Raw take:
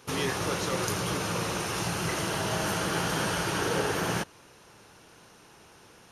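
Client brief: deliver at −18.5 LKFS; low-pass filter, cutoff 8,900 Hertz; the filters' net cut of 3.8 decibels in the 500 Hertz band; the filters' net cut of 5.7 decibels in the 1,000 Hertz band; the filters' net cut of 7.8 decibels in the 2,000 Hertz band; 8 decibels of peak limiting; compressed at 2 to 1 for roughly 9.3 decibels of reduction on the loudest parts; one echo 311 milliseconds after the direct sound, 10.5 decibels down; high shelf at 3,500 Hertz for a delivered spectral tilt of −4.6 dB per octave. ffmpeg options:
ffmpeg -i in.wav -af "lowpass=8900,equalizer=frequency=500:width_type=o:gain=-3.5,equalizer=frequency=1000:width_type=o:gain=-3.5,equalizer=frequency=2000:width_type=o:gain=-7.5,highshelf=frequency=3500:gain=-6,acompressor=threshold=-46dB:ratio=2,alimiter=level_in=11.5dB:limit=-24dB:level=0:latency=1,volume=-11.5dB,aecho=1:1:311:0.299,volume=26dB" out.wav

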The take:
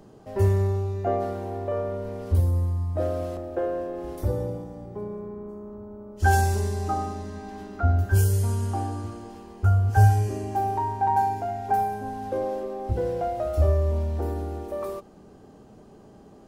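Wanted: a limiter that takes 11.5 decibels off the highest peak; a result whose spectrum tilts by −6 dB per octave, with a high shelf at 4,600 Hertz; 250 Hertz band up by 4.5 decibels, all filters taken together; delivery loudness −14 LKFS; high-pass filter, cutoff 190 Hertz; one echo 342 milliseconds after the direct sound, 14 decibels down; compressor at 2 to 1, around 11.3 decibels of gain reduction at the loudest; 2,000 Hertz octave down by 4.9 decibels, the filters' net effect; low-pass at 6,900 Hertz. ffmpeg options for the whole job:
ffmpeg -i in.wav -af "highpass=190,lowpass=6900,equalizer=frequency=250:width_type=o:gain=8,equalizer=frequency=2000:width_type=o:gain=-8,highshelf=frequency=4600:gain=3.5,acompressor=threshold=-40dB:ratio=2,alimiter=level_in=10dB:limit=-24dB:level=0:latency=1,volume=-10dB,aecho=1:1:342:0.2,volume=28dB" out.wav

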